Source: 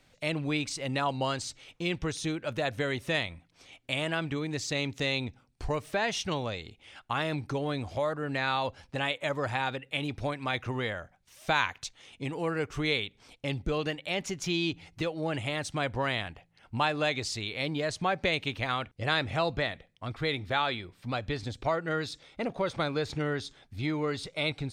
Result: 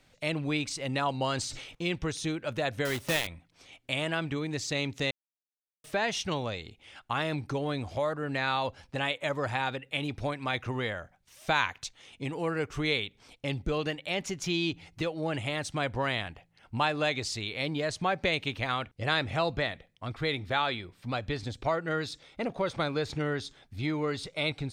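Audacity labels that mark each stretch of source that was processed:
1.140000	1.750000	level that may fall only so fast at most 47 dB per second
2.850000	3.280000	one scale factor per block 3 bits
5.110000	5.840000	silence

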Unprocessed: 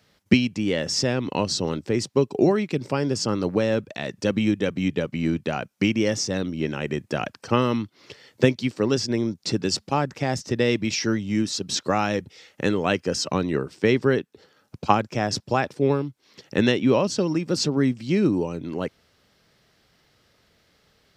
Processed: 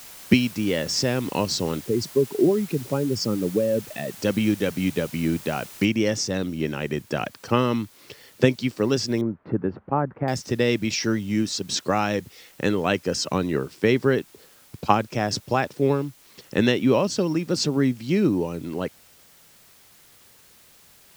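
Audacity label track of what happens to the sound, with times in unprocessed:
1.860000	4.200000	expanding power law on the bin magnitudes exponent 1.8
5.850000	5.850000	noise floor change −43 dB −54 dB
9.210000	10.280000	low-pass filter 1,500 Hz 24 dB per octave

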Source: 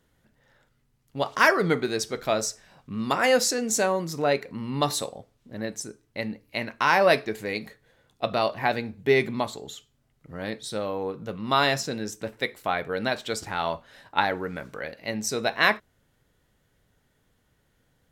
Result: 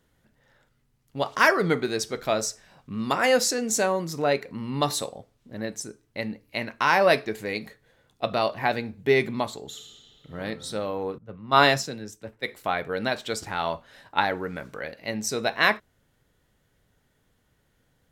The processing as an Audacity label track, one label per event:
9.680000	10.360000	thrown reverb, RT60 2.8 s, DRR −0.5 dB
11.180000	12.480000	multiband upward and downward expander depth 100%

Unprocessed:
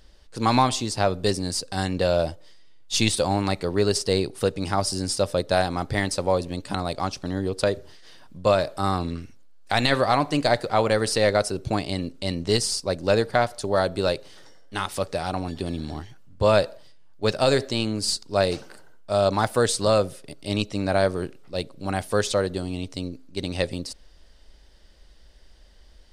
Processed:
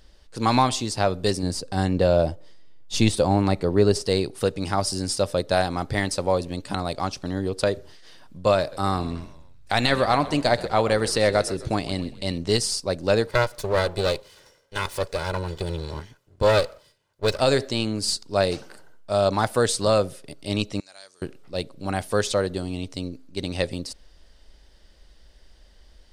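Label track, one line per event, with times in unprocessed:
1.430000	4.040000	tilt shelving filter lows +4.5 dB, about 1,100 Hz
8.590000	12.380000	echo with shifted repeats 129 ms, feedback 48%, per repeat −53 Hz, level −16.5 dB
13.270000	17.400000	lower of the sound and its delayed copy delay 2 ms
20.800000	21.220000	resonant band-pass 6,600 Hz, Q 2.9

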